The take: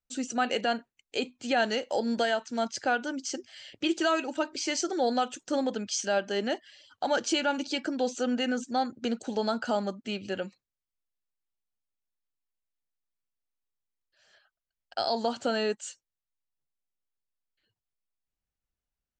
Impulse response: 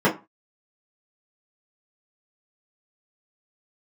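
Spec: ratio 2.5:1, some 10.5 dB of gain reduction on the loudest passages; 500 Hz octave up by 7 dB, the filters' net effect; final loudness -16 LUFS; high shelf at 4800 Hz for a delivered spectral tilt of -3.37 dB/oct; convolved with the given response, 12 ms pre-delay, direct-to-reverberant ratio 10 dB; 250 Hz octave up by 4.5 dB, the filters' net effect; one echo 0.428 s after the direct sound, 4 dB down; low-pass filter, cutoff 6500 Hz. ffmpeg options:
-filter_complex "[0:a]lowpass=6.5k,equalizer=f=250:t=o:g=3,equalizer=f=500:t=o:g=8,highshelf=f=4.8k:g=-4,acompressor=threshold=-33dB:ratio=2.5,aecho=1:1:428:0.631,asplit=2[a][b];[1:a]atrim=start_sample=2205,adelay=12[c];[b][c]afir=irnorm=-1:irlink=0,volume=-29dB[d];[a][d]amix=inputs=2:normalize=0,volume=16dB"

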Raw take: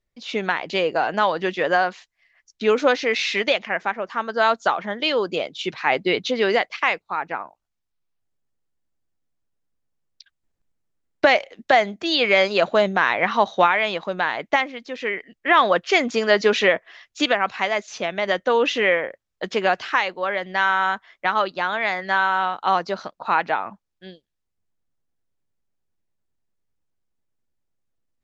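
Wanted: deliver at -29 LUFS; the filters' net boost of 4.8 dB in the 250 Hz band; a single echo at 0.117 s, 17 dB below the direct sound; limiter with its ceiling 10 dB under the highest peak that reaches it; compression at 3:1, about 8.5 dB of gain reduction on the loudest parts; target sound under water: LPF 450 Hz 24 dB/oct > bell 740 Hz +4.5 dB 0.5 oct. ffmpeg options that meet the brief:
-af "equalizer=f=250:t=o:g=6.5,acompressor=threshold=-22dB:ratio=3,alimiter=limit=-17.5dB:level=0:latency=1,lowpass=f=450:w=0.5412,lowpass=f=450:w=1.3066,equalizer=f=740:t=o:w=0.5:g=4.5,aecho=1:1:117:0.141,volume=5dB"

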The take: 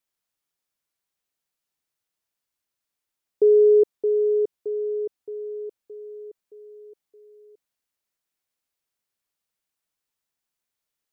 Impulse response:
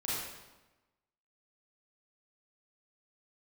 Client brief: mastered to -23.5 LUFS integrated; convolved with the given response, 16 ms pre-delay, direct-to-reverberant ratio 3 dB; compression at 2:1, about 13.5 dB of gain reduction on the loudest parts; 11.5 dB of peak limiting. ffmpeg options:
-filter_complex "[0:a]acompressor=threshold=-39dB:ratio=2,alimiter=level_in=8.5dB:limit=-24dB:level=0:latency=1,volume=-8.5dB,asplit=2[a][b];[1:a]atrim=start_sample=2205,adelay=16[c];[b][c]afir=irnorm=-1:irlink=0,volume=-8dB[d];[a][d]amix=inputs=2:normalize=0,volume=14dB"

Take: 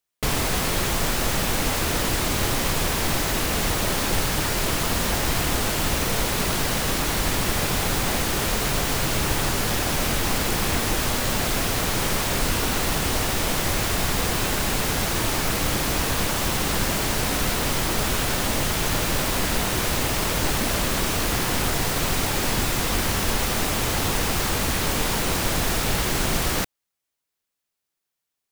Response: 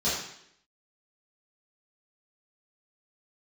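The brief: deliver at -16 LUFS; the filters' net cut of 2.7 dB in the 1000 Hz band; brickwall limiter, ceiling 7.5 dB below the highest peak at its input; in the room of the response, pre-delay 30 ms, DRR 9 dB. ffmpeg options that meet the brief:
-filter_complex "[0:a]equalizer=f=1k:t=o:g=-3.5,alimiter=limit=-17dB:level=0:latency=1,asplit=2[a][b];[1:a]atrim=start_sample=2205,adelay=30[c];[b][c]afir=irnorm=-1:irlink=0,volume=-20dB[d];[a][d]amix=inputs=2:normalize=0,volume=9.5dB"

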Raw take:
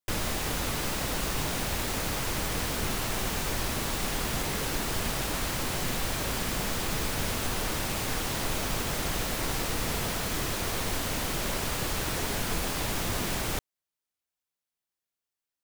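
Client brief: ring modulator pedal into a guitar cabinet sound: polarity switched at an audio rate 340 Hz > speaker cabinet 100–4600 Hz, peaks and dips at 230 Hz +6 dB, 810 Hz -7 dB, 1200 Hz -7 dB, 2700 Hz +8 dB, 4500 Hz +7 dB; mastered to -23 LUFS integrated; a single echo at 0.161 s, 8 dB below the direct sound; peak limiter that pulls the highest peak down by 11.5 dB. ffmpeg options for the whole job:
-af "alimiter=level_in=4dB:limit=-24dB:level=0:latency=1,volume=-4dB,aecho=1:1:161:0.398,aeval=exprs='val(0)*sgn(sin(2*PI*340*n/s))':c=same,highpass=100,equalizer=f=230:t=q:w=4:g=6,equalizer=f=810:t=q:w=4:g=-7,equalizer=f=1.2k:t=q:w=4:g=-7,equalizer=f=2.7k:t=q:w=4:g=8,equalizer=f=4.5k:t=q:w=4:g=7,lowpass=f=4.6k:w=0.5412,lowpass=f=4.6k:w=1.3066,volume=12dB"

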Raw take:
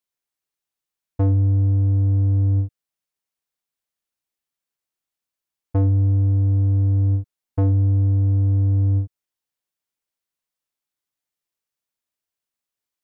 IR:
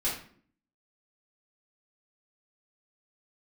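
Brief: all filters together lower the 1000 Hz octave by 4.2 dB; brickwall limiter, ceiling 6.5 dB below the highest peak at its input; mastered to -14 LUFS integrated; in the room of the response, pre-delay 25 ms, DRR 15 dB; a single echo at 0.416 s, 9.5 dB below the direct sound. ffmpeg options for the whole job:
-filter_complex "[0:a]equalizer=f=1k:t=o:g=-6.5,alimiter=limit=-20.5dB:level=0:latency=1,aecho=1:1:416:0.335,asplit=2[a][b];[1:a]atrim=start_sample=2205,adelay=25[c];[b][c]afir=irnorm=-1:irlink=0,volume=-22dB[d];[a][d]amix=inputs=2:normalize=0,volume=9.5dB"

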